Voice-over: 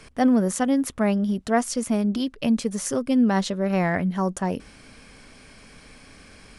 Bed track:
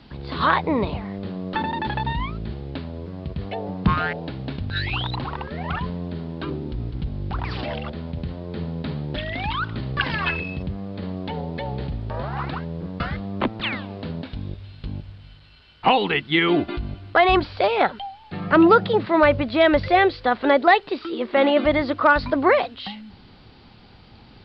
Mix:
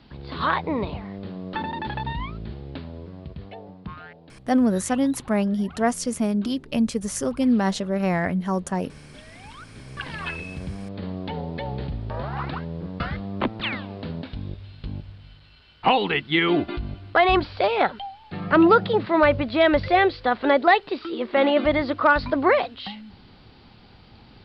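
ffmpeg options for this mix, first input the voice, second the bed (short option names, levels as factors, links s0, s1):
-filter_complex "[0:a]adelay=4300,volume=0.944[s0];[1:a]volume=4.22,afade=t=out:st=2.93:d=0.96:silence=0.199526,afade=t=in:st=9.68:d=1.37:silence=0.149624[s1];[s0][s1]amix=inputs=2:normalize=0"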